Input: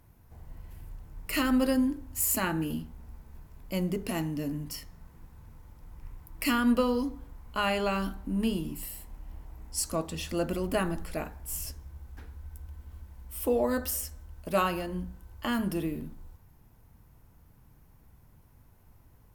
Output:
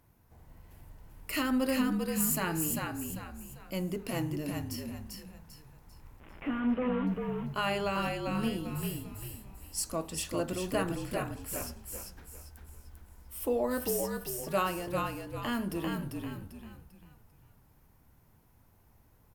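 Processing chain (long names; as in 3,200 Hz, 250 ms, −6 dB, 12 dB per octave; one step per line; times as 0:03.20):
0:06.20–0:07.07: linear delta modulator 16 kbit/s, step −40.5 dBFS
low-shelf EQ 96 Hz −8 dB
on a send: echo with shifted repeats 395 ms, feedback 36%, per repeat −49 Hz, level −3.5 dB
on the sum: level −3 dB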